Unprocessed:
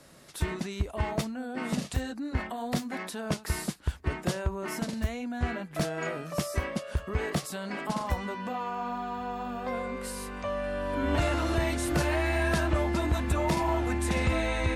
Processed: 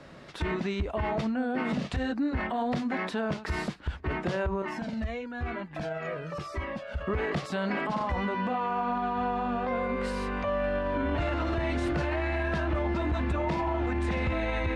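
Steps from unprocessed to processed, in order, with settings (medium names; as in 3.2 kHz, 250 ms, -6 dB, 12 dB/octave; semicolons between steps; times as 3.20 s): low-pass 3.1 kHz 12 dB/octave; peak limiter -28.5 dBFS, peak gain reduction 11 dB; 4.62–7.01 s: Shepard-style flanger falling 1 Hz; trim +7 dB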